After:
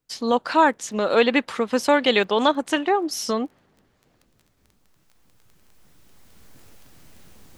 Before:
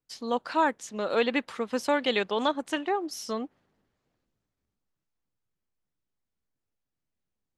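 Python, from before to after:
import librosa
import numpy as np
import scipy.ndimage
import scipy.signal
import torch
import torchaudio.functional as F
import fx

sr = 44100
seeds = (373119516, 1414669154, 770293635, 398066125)

y = fx.recorder_agc(x, sr, target_db=-20.5, rise_db_per_s=9.3, max_gain_db=30)
y = fx.dmg_crackle(y, sr, seeds[0], per_s=11.0, level_db=-48.0)
y = y * 10.0 ** (7.5 / 20.0)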